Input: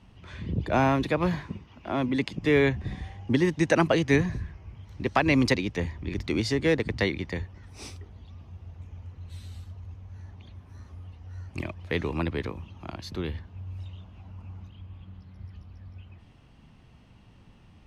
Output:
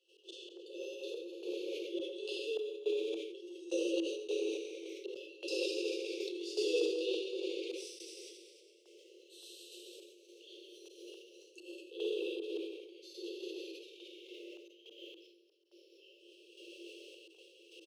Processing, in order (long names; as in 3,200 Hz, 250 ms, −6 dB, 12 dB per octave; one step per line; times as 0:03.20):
linear-phase brick-wall band-stop 570–2,600 Hz
on a send: echo with shifted repeats 200 ms, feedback 55%, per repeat −110 Hz, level −12 dB
on the sum: dense smooth reverb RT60 1.8 s, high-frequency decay 0.95×, DRR −7 dB
reversed playback
downward compressor 6 to 1, threshold −35 dBFS, peak gain reduction 22.5 dB
reversed playback
volume swells 112 ms
noise gate −51 dBFS, range −8 dB
sample-and-hold tremolo 3.5 Hz, depth 95%
Chebyshev high-pass filter 330 Hz, order 10
level that may fall only so fast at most 50 dB per second
level +7 dB